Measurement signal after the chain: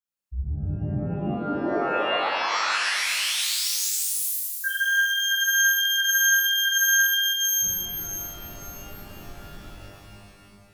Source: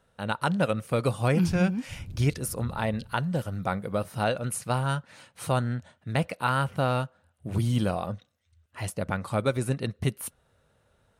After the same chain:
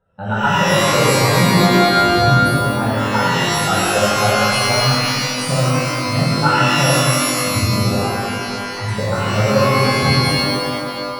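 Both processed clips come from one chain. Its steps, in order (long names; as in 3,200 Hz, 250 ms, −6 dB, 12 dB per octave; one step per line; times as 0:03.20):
expanding power law on the bin magnitudes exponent 1.9
transient designer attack +10 dB, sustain −11 dB
reverb with rising layers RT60 2.2 s, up +12 semitones, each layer −2 dB, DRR −10.5 dB
level −4 dB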